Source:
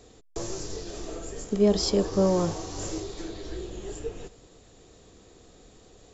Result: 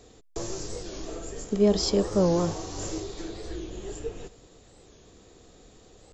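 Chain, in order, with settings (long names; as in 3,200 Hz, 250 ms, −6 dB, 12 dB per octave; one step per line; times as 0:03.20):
wow of a warped record 45 rpm, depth 160 cents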